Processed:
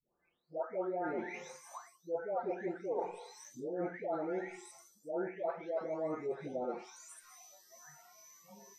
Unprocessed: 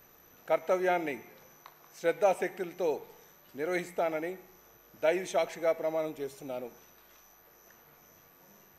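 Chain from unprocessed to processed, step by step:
every frequency bin delayed by itself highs late, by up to 799 ms
reversed playback
downward compressor 10 to 1, threshold −43 dBFS, peak gain reduction 19 dB
reversed playback
low-shelf EQ 140 Hz −7.5 dB
convolution reverb RT60 0.30 s, pre-delay 32 ms, DRR 14 dB
noise reduction from a noise print of the clip's start 26 dB
low-pass filter 9,100 Hz 24 dB per octave
parametric band 3,000 Hz −13.5 dB 1 octave
treble cut that deepens with the level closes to 1,700 Hz, closed at −44.5 dBFS
level +10 dB

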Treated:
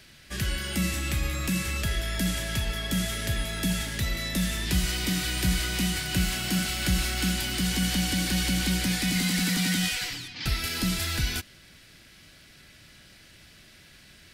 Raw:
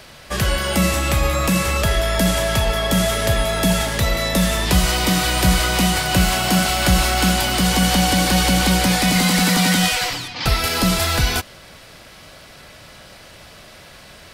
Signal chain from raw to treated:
flat-topped bell 750 Hz −10.5 dB
level −9 dB

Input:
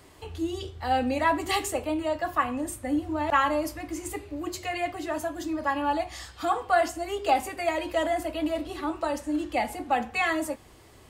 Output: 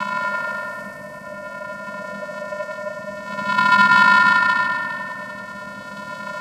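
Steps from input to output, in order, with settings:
low-pass filter 5,300 Hz
bass and treble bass +4 dB, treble +6 dB
in parallel at +1 dB: downward compressor, threshold −39 dBFS, peak gain reduction 20 dB
on the sum: extreme stretch with random phases 13×, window 0.25 s, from 0:06.79
bit reduction 6 bits
hollow resonant body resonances 200/800/3,900 Hz, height 16 dB, ringing for 40 ms
half-wave rectification
channel vocoder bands 8, square 116 Hz
on a send: bucket-brigade delay 177 ms, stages 2,048, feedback 77%, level −5 dB
on the sum: wrong playback speed 45 rpm record played at 78 rpm
level −2 dB

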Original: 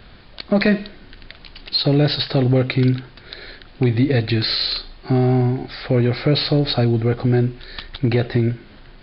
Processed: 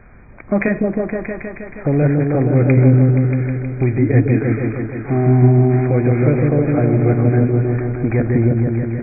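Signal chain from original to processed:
linear-phase brick-wall low-pass 2,500 Hz
echo whose low-pass opens from repeat to repeat 158 ms, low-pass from 400 Hz, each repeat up 1 octave, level 0 dB

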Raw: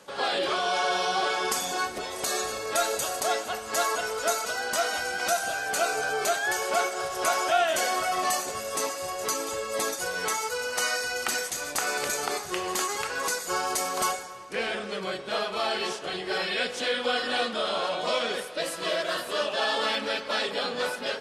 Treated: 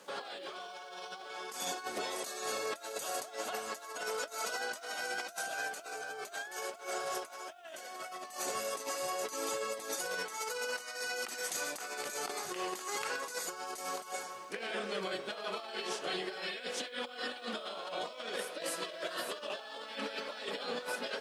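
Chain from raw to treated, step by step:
high-pass filter 190 Hz 12 dB per octave
compressor whose output falls as the input rises −32 dBFS, ratio −0.5
bit reduction 11 bits
level −7 dB

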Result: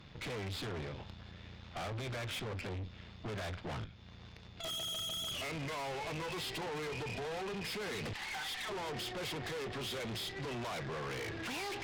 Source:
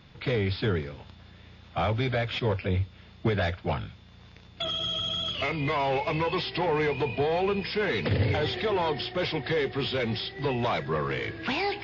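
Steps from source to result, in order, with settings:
0:03.84–0:04.64: downward compressor 6 to 1, threshold −46 dBFS, peak gain reduction 16 dB
0:08.13–0:08.69: Chebyshev high-pass filter 750 Hz, order 10
brickwall limiter −23.5 dBFS, peak gain reduction 9 dB
tube saturation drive 41 dB, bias 0.7
level +2.5 dB

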